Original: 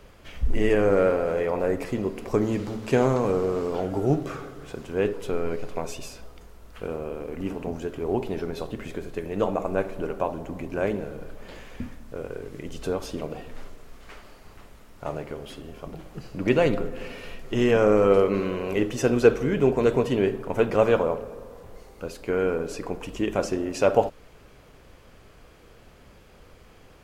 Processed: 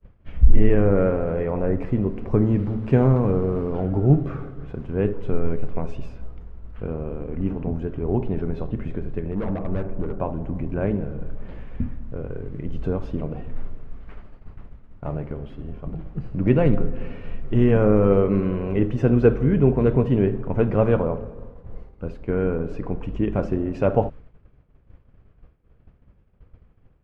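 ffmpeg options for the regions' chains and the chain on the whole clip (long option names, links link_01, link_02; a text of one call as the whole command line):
ffmpeg -i in.wav -filter_complex "[0:a]asettb=1/sr,asplit=3[link_01][link_02][link_03];[link_01]atrim=end=9.314[link_04];[link_02]atrim=start=9.31:end=10.2,asetpts=PTS-STARTPTS,afade=type=in:duration=0.004:curve=qsin,afade=type=out:start_time=0.886:duration=0.004:curve=qsin,bandreject=frequency=50:width_type=h:width=6,bandreject=frequency=100:width_type=h:width=6,bandreject=frequency=150:width_type=h:width=6,adynamicsmooth=sensitivity=3.5:basefreq=1600,volume=26dB,asoftclip=hard,volume=-26dB[link_05];[link_03]atrim=start=10.196[link_06];[link_04][link_05]acrossfade=duration=0.004:curve1=hsin:curve2=qsin[link_07];[link_07][link_06]acrossfade=duration=0.004:curve1=qsin:curve2=hsin,bass=frequency=250:gain=13,treble=frequency=4000:gain=-13,agate=range=-33dB:threshold=-30dB:ratio=3:detection=peak,aemphasis=mode=reproduction:type=75kf,volume=-1.5dB" out.wav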